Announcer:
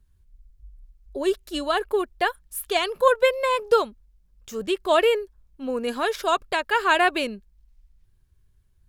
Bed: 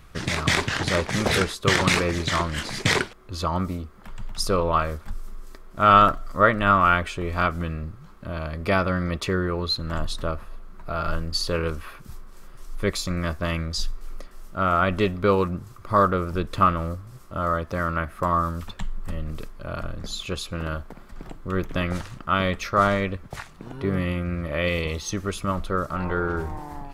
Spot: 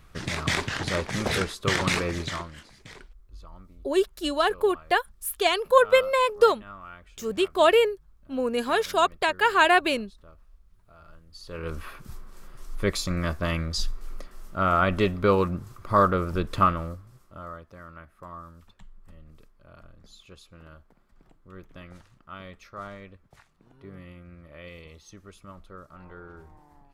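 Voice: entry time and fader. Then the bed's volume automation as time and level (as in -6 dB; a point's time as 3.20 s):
2.70 s, +0.5 dB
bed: 2.22 s -4.5 dB
2.81 s -25.5 dB
11.27 s -25.5 dB
11.79 s -1 dB
16.59 s -1 dB
17.75 s -19.5 dB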